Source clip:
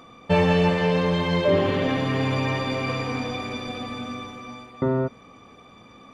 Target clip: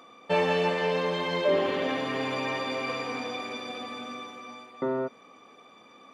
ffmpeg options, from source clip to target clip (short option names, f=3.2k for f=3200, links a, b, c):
-af "highpass=310,volume=-3dB"